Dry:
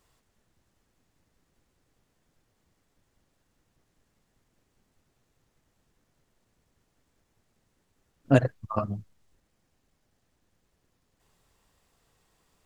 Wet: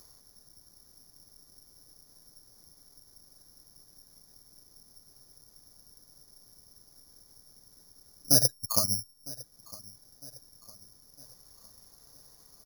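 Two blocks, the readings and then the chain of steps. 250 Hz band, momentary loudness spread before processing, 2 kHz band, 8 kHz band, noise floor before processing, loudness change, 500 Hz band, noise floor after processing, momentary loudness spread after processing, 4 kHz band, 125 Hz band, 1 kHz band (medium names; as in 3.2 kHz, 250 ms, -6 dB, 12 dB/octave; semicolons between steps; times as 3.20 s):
-10.0 dB, 13 LU, -14.5 dB, no reading, -74 dBFS, +2.0 dB, -9.5 dB, -60 dBFS, 21 LU, +20.0 dB, -9.0 dB, -8.0 dB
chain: low-pass 1.5 kHz 12 dB/octave; in parallel at 0 dB: upward compressor, threshold -41 dBFS; on the sum: peak limiter -8 dBFS, peak gain reduction 7 dB; on a send: feedback delay 956 ms, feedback 49%, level -20.5 dB; on the sum: careless resampling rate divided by 8×, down filtered, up zero stuff; trim -11.5 dB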